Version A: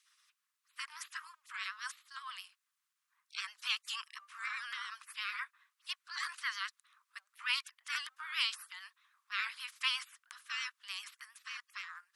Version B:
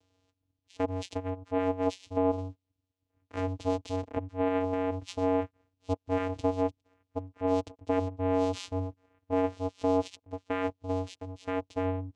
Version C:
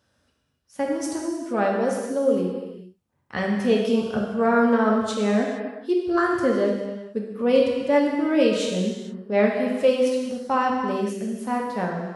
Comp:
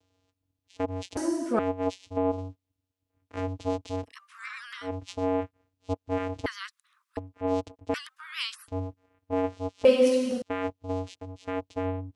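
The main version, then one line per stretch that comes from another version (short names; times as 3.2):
B
1.17–1.59 from C
4.07–4.86 from A, crossfade 0.10 s
6.46–7.17 from A
7.94–8.68 from A
9.85–10.42 from C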